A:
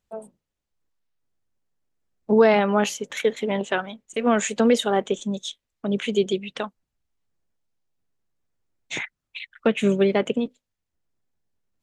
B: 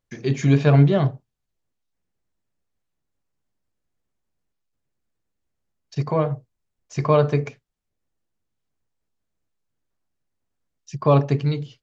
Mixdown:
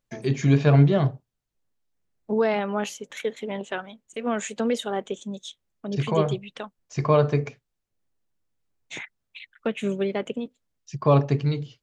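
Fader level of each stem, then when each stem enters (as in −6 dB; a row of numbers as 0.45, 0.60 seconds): −6.5, −2.0 decibels; 0.00, 0.00 seconds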